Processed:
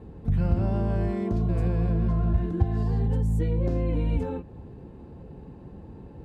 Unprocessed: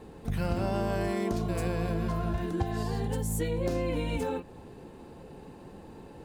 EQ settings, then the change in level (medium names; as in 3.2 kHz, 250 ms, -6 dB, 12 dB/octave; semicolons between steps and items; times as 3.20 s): high-pass 53 Hz; RIAA curve playback; -4.0 dB